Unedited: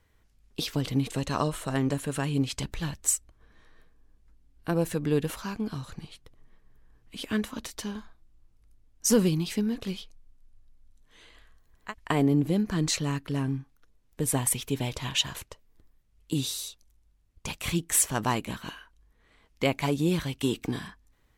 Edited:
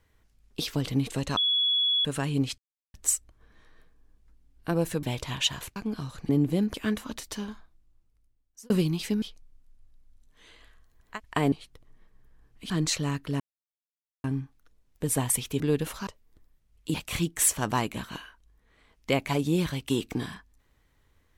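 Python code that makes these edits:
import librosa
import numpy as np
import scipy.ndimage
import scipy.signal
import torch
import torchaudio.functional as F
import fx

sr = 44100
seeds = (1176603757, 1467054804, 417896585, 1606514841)

y = fx.edit(x, sr, fx.bleep(start_s=1.37, length_s=0.68, hz=3380.0, db=-21.5),
    fx.silence(start_s=2.58, length_s=0.36),
    fx.swap(start_s=5.03, length_s=0.47, other_s=14.77, other_length_s=0.73),
    fx.swap(start_s=6.03, length_s=1.18, other_s=12.26, other_length_s=0.45),
    fx.fade_out_span(start_s=7.88, length_s=1.29),
    fx.cut(start_s=9.69, length_s=0.27),
    fx.insert_silence(at_s=13.41, length_s=0.84),
    fx.cut(start_s=16.37, length_s=1.1), tone=tone)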